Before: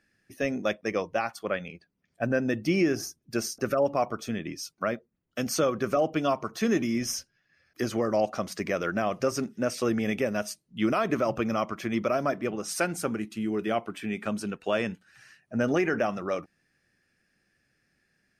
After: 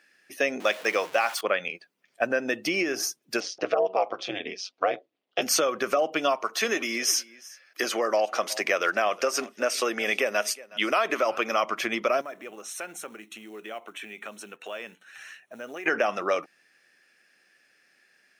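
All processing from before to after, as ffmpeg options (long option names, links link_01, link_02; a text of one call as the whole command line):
ffmpeg -i in.wav -filter_complex "[0:a]asettb=1/sr,asplit=3[link_01][link_02][link_03];[link_01]atrim=end=0.604[link_04];[link_02]atrim=start=0.6:end=1.41,asetpts=PTS-STARTPTS,afade=type=in:duration=0.004:curve=qsin,afade=type=out:start_time=0.806:duration=0.004:curve=qsin,aeval=exprs='val(0)+0.5*0.00891*sgn(val(0))':channel_layout=same,lowshelf=frequency=340:gain=-7[link_05];[link_03]atrim=start=1.406[link_06];[link_04][link_05]acrossfade=duration=0.004:curve1=hsin:curve2=qsin[link_07];[link_07][link_06]acrossfade=duration=0.004:curve1=qsin:curve2=hsin,asettb=1/sr,asplit=3[link_08][link_09][link_10];[link_08]atrim=end=3.404[link_11];[link_09]atrim=start=3.4:end=5.42,asetpts=PTS-STARTPTS,afade=type=in:duration=0.004:curve=qsin,afade=type=out:start_time=2.016:duration=0.004:curve=qsin,highpass=100,equalizer=frequency=600:width_type=q:width=4:gain=7,equalizer=frequency=1500:width_type=q:width=4:gain=-6,equalizer=frequency=3300:width_type=q:width=4:gain=5,lowpass=frequency=5000:width=0.5412,lowpass=frequency=5000:width=1.3066,aeval=exprs='val(0)*sin(2*PI*96*n/s)':channel_layout=same[link_12];[link_10]atrim=start=5.416[link_13];[link_11][link_12]acrossfade=duration=0.004:curve1=hsin:curve2=qsin[link_14];[link_14][link_13]acrossfade=duration=0.004:curve1=qsin:curve2=hsin,asettb=1/sr,asplit=3[link_15][link_16][link_17];[link_15]atrim=end=6.364[link_18];[link_16]atrim=start=6.36:end=11.63,asetpts=PTS-STARTPTS,afade=type=in:duration=0.004:curve=qsin,afade=type=out:start_time=5.266:duration=0.004:curve=qsin,highpass=frequency=380:poles=1,aecho=1:1:366:0.075,atrim=end_sample=232407[link_19];[link_17]atrim=start=11.626[link_20];[link_18][link_19]acrossfade=duration=0.004:curve1=hsin:curve2=qsin[link_21];[link_21][link_20]acrossfade=duration=0.004:curve1=qsin:curve2=hsin,asettb=1/sr,asplit=3[link_22][link_23][link_24];[link_22]atrim=end=12.214[link_25];[link_23]atrim=start=12.21:end=15.86,asetpts=PTS-STARTPTS,afade=type=in:duration=0.004:curve=qsin,afade=type=out:start_time=3.646:duration=0.004:curve=qsin,acrusher=bits=7:mode=log:mix=0:aa=0.000001,acompressor=threshold=-49dB:ratio=2.5:attack=3.2:release=140:knee=1:detection=peak,asuperstop=centerf=4800:order=4:qfactor=4.5[link_26];[link_24]atrim=start=15.856[link_27];[link_25][link_26]acrossfade=duration=0.004:curve1=hsin:curve2=qsin[link_28];[link_28][link_27]acrossfade=duration=0.004:curve1=qsin:curve2=hsin,acompressor=threshold=-27dB:ratio=6,highpass=460,equalizer=frequency=2800:width_type=o:width=0.96:gain=4,volume=8.5dB" out.wav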